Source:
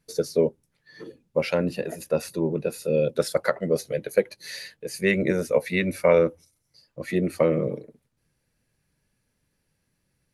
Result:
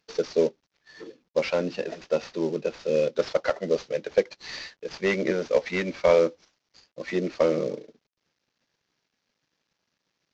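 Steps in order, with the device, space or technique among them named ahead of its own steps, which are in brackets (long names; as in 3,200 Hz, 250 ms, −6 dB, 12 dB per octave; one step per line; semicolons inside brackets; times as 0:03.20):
early wireless headset (high-pass filter 250 Hz 12 dB per octave; variable-slope delta modulation 32 kbit/s)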